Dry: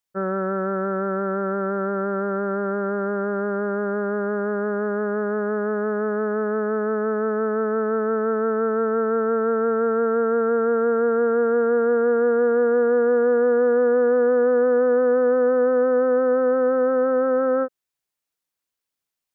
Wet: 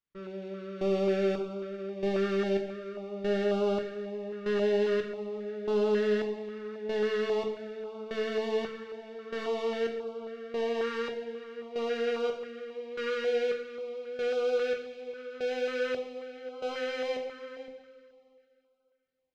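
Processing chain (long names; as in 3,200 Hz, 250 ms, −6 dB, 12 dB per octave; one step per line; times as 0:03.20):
tilt shelving filter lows +3.5 dB
brickwall limiter −16 dBFS, peak gain reduction 6 dB
in parallel at −4 dB: fuzz pedal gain 38 dB, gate −46 dBFS
on the sum: gate pattern "x.....xxx" 111 BPM −24 dB
soft clipping −27 dBFS, distortion −9 dB
high-frequency loss of the air 210 metres
on a send at −1 dB: convolution reverb, pre-delay 3 ms
on the sum: notch on a step sequencer 3.7 Hz 710–1,800 Hz
level −2 dB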